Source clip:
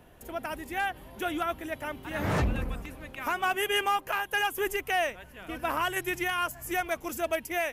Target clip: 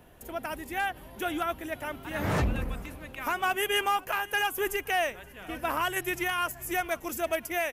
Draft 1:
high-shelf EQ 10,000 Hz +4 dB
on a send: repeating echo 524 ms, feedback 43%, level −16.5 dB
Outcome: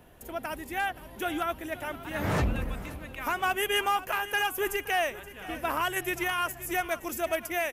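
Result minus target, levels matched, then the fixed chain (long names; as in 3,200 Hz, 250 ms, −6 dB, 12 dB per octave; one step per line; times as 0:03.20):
echo-to-direct +8 dB
high-shelf EQ 10,000 Hz +4 dB
on a send: repeating echo 524 ms, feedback 43%, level −24.5 dB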